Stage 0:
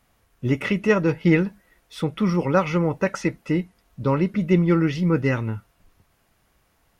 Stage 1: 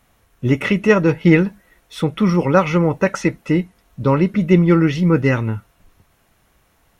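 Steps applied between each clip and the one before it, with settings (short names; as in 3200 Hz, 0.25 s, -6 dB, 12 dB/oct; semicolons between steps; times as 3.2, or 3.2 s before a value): notch 4800 Hz, Q 13; gain +5.5 dB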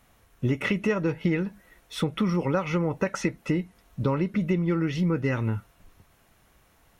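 compressor 6:1, threshold -20 dBFS, peak gain reduction 13 dB; gain -2 dB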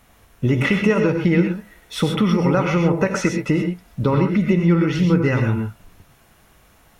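non-linear reverb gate 0.15 s rising, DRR 4 dB; gain +6.5 dB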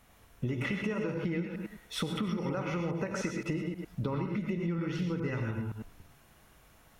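reverse delay 0.104 s, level -8 dB; compressor 5:1, threshold -23 dBFS, peak gain reduction 12 dB; gain -7.5 dB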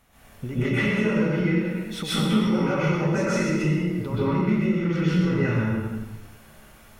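plate-style reverb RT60 0.9 s, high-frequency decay 0.8×, pre-delay 0.115 s, DRR -10 dB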